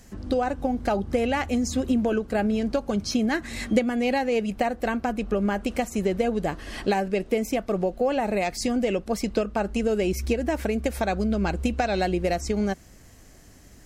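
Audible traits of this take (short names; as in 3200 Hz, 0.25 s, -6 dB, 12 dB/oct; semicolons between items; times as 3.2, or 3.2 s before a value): noise floor -50 dBFS; spectral tilt -5.0 dB/oct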